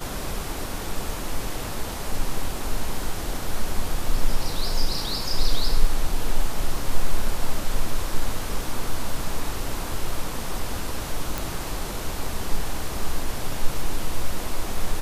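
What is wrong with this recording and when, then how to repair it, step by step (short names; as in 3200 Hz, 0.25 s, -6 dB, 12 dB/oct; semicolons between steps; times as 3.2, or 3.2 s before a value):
11.38 pop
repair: de-click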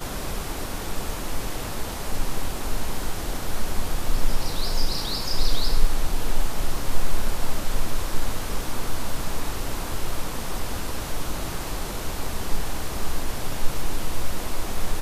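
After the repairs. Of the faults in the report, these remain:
none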